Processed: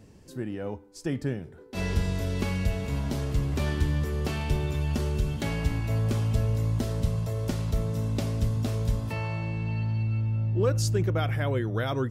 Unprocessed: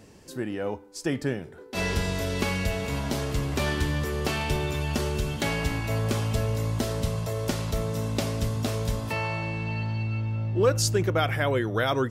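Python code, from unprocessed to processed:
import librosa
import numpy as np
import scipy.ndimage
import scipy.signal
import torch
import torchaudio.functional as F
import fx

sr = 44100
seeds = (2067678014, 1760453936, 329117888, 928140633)

y = fx.low_shelf(x, sr, hz=260.0, db=10.5)
y = y * librosa.db_to_amplitude(-7.0)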